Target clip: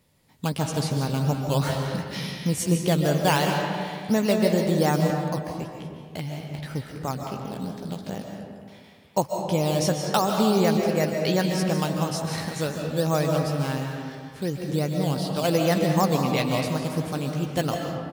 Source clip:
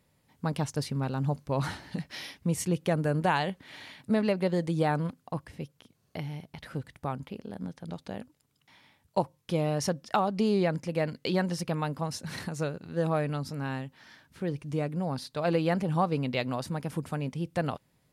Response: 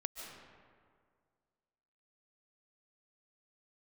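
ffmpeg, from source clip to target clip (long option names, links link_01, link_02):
-filter_complex "[0:a]acrossover=split=1700[link_01][link_02];[link_01]acrusher=samples=9:mix=1:aa=0.000001:lfo=1:lforange=5.4:lforate=2.8[link_03];[link_02]asplit=2[link_04][link_05];[link_05]adelay=15,volume=-2.5dB[link_06];[link_04][link_06]amix=inputs=2:normalize=0[link_07];[link_03][link_07]amix=inputs=2:normalize=0[link_08];[1:a]atrim=start_sample=2205[link_09];[link_08][link_09]afir=irnorm=-1:irlink=0,volume=6.5dB"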